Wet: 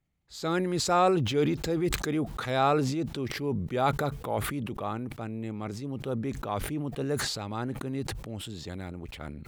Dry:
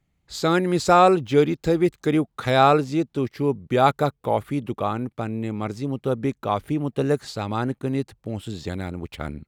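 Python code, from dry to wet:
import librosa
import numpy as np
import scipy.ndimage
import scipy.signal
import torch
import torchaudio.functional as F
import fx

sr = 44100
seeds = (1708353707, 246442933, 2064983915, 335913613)

y = fx.transient(x, sr, attack_db=-3, sustain_db=2)
y = fx.sustainer(y, sr, db_per_s=36.0)
y = F.gain(torch.from_numpy(y), -8.0).numpy()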